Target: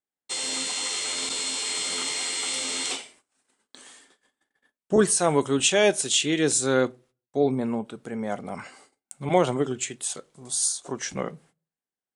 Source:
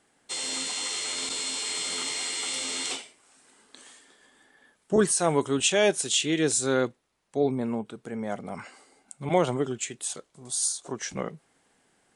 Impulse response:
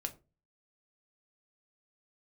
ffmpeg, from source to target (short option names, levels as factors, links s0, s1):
-filter_complex "[0:a]agate=range=0.0224:threshold=0.00158:ratio=16:detection=peak,asplit=2[s0][s1];[1:a]atrim=start_sample=2205,lowshelf=f=170:g=-6[s2];[s1][s2]afir=irnorm=-1:irlink=0,volume=0.376[s3];[s0][s3]amix=inputs=2:normalize=0"